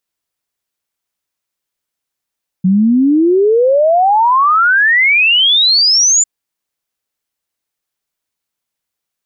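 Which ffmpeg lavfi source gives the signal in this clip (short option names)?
-f lavfi -i "aevalsrc='0.447*clip(min(t,3.6-t)/0.01,0,1)*sin(2*PI*180*3.6/log(7200/180)*(exp(log(7200/180)*t/3.6)-1))':d=3.6:s=44100"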